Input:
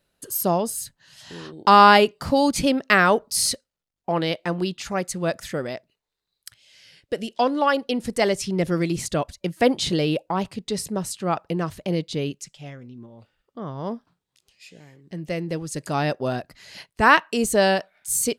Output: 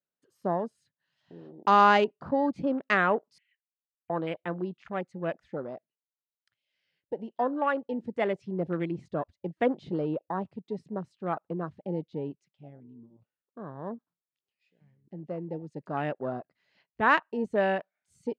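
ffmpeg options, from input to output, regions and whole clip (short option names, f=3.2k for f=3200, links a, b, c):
-filter_complex "[0:a]asettb=1/sr,asplit=3[a][b][c];[a]atrim=end=3.384[d];[b]atrim=start=3.38:end=4.1,asetpts=PTS-STARTPTS,afade=t=in:d=0.004:c=qsin,afade=t=out:st=0.716:d=0.004:c=qsin,asuperpass=centerf=2200:order=12:qfactor=1.5,acompressor=threshold=-44dB:ratio=2.5:attack=3.2:release=140:knee=1:detection=peak[e];[c]atrim=start=4.096[f];[d][e]acrossfade=d=0.004:c1=hsin:c2=qsin[g];[g][f]acrossfade=d=0.004:c1=qsin:c2=hsin,lowpass=2.8k,afwtdn=0.0224,highpass=150,volume=-7dB"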